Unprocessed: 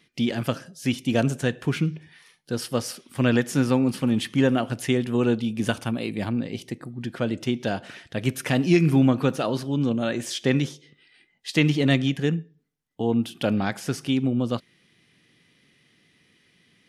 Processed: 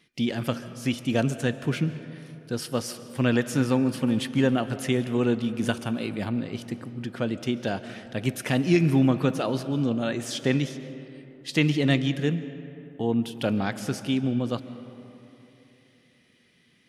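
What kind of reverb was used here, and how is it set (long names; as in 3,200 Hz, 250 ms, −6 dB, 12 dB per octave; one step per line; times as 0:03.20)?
comb and all-pass reverb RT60 3.2 s, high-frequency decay 0.45×, pre-delay 100 ms, DRR 13 dB
level −2 dB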